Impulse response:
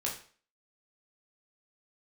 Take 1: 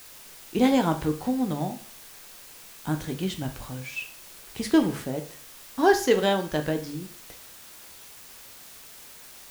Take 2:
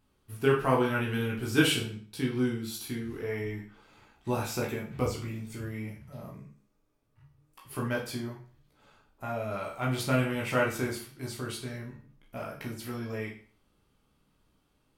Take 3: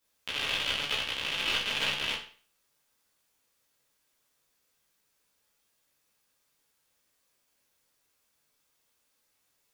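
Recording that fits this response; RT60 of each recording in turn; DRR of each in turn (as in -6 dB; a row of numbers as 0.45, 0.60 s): 2; 0.45, 0.45, 0.45 s; 5.5, -3.0, -7.0 dB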